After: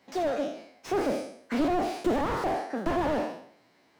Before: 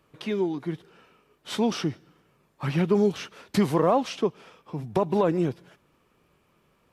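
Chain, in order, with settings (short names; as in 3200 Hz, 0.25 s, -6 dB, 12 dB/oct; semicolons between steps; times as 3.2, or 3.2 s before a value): spectral trails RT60 1.06 s; HPF 80 Hz 12 dB/oct; high shelf 7000 Hz -10 dB; speed mistake 45 rpm record played at 78 rpm; slew limiter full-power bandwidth 35 Hz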